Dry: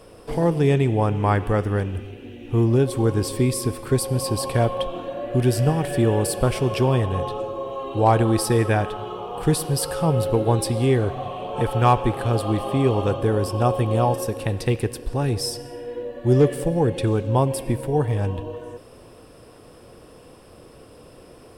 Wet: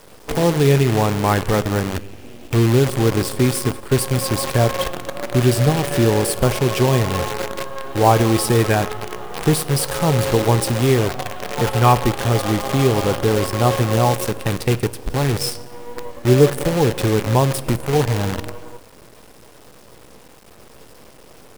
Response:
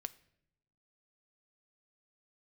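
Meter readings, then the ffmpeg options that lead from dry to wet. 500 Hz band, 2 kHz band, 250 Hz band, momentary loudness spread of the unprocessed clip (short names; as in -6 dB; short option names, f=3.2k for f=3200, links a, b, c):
+3.0 dB, +7.5 dB, +3.0 dB, 11 LU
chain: -filter_complex "[0:a]acrusher=bits=5:dc=4:mix=0:aa=0.000001,asplit=2[a][b];[1:a]atrim=start_sample=2205[c];[b][c]afir=irnorm=-1:irlink=0,volume=11.5dB[d];[a][d]amix=inputs=2:normalize=0,volume=-8dB"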